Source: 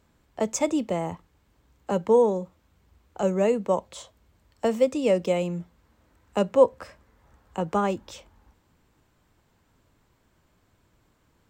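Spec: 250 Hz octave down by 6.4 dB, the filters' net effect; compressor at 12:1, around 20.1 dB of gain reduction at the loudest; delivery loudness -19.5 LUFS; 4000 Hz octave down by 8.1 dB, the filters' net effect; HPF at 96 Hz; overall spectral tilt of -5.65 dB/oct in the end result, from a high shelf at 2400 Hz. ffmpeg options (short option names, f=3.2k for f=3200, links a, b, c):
-af "highpass=96,equalizer=f=250:t=o:g=-8.5,highshelf=f=2.4k:g=-8.5,equalizer=f=4k:t=o:g=-4,acompressor=threshold=-34dB:ratio=12,volume=21.5dB"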